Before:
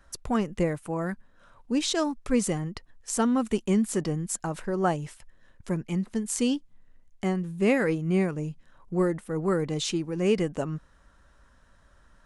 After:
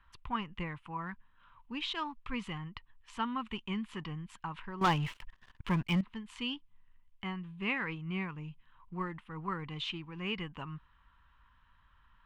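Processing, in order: FFT filter 110 Hz 0 dB, 620 Hz -16 dB, 990 Hz +8 dB, 1.5 kHz 0 dB, 3 kHz +8 dB, 5.9 kHz -19 dB, 9.7 kHz -25 dB; 4.81–6.01 s: waveshaping leveller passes 3; trim -7 dB

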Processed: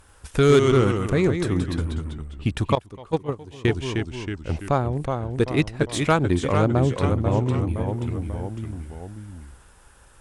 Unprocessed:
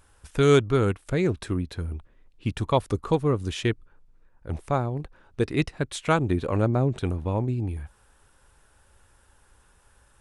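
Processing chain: ever faster or slower copies 90 ms, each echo -1 st, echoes 3, each echo -6 dB; in parallel at +1.5 dB: compression 12:1, threshold -31 dBFS, peak gain reduction 19.5 dB; on the sum: saturation -6.5 dBFS, distortion -25 dB; Chebyshev shaper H 7 -30 dB, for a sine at -7.5 dBFS; 2.75–3.65 s: gate -17 dBFS, range -18 dB; trim +1.5 dB

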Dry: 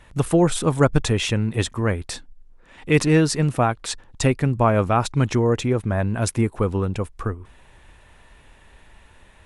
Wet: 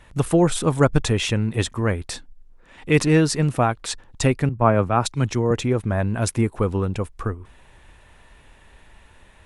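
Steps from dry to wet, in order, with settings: 4.49–5.51 s: three bands expanded up and down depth 100%

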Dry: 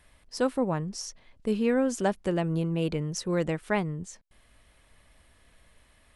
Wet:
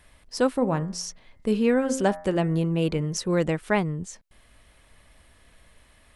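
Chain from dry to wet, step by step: 0.55–3.17 s: de-hum 88.09 Hz, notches 25; trim +4 dB

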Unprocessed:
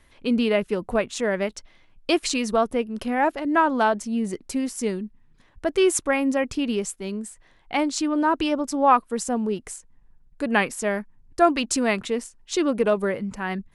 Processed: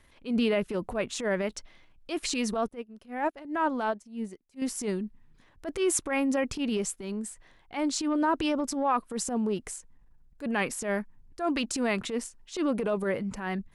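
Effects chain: peak limiter -14 dBFS, peak gain reduction 8.5 dB; transient shaper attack -11 dB, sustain +2 dB; 2.68–4.62 s: upward expansion 2.5:1, over -39 dBFS; trim -2.5 dB

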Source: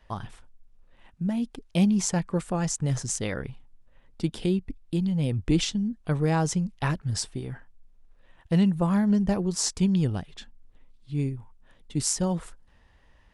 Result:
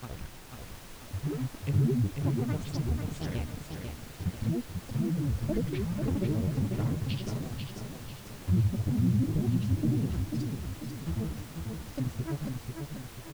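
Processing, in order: granulator 100 ms, grains 28 per s, pitch spread up and down by 12 st; peaking EQ 1 kHz -11.5 dB 2.7 oct; in parallel at -7 dB: word length cut 6-bit, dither none; on the sum: low-pass that closes with the level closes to 460 Hz, closed at -21.5 dBFS; added noise pink -46 dBFS; on a send: feedback delay 492 ms, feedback 46%, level -5 dB; on the sum: trim -3 dB

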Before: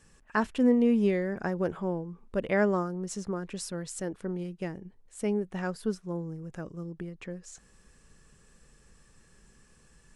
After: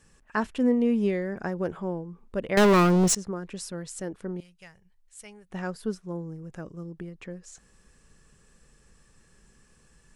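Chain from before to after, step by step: 2.57–3.15 s: waveshaping leveller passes 5; 4.40–5.50 s: amplifier tone stack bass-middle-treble 10-0-10

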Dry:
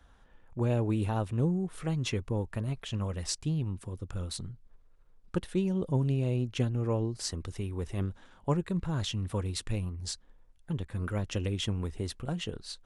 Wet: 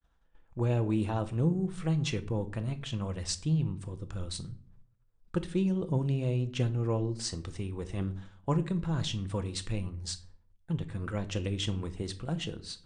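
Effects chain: elliptic low-pass 9 kHz, stop band 40 dB; expander -50 dBFS; simulated room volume 500 m³, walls furnished, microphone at 0.71 m

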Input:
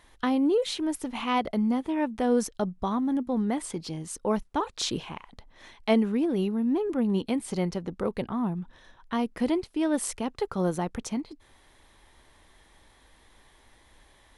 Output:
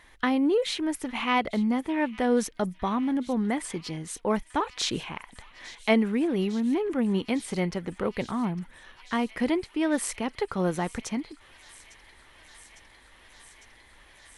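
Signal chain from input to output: peaking EQ 2 kHz +7.5 dB 0.97 oct; feedback echo behind a high-pass 854 ms, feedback 85%, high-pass 2.1 kHz, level -18 dB

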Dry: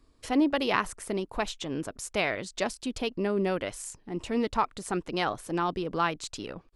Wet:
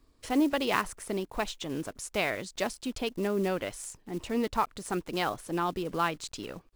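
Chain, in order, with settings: block-companded coder 5-bit; trim -1.5 dB

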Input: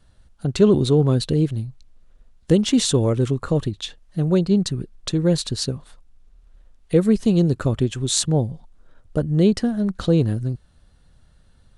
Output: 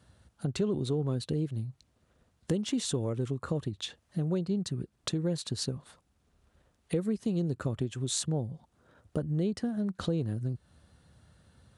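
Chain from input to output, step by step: high-pass 71 Hz 24 dB/octave; peaking EQ 4 kHz -2.5 dB 1.9 oct; compression 3:1, threshold -32 dBFS, peak gain reduction 16.5 dB

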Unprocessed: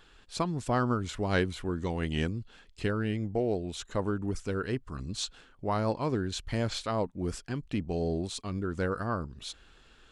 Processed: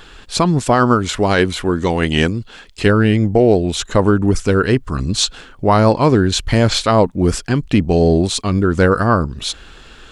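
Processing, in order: 0.59–2.86 s: bass shelf 200 Hz -7.5 dB; loudness maximiser +19 dB; trim -1 dB

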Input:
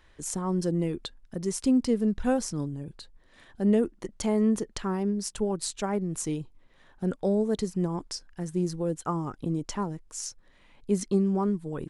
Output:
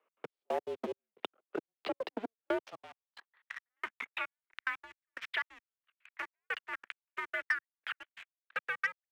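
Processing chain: gliding tape speed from 77% -> 184%; gate with hold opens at -48 dBFS; waveshaping leveller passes 3; trance gate "x.x...x." 180 bpm -60 dB; mistuned SSB -210 Hz 350–3500 Hz; high-pass sweep 410 Hz -> 1.8 kHz, 2.34–3.69 s; waveshaping leveller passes 1; three bands compressed up and down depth 70%; trim -9 dB

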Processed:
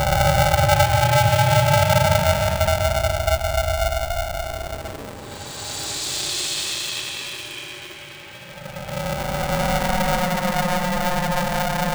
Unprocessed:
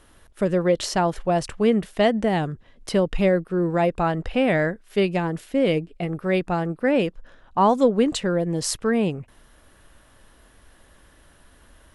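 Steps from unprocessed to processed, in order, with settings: de-hum 224.8 Hz, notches 14; Paulstretch 35×, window 0.05 s, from 7.98 s; polarity switched at an audio rate 360 Hz

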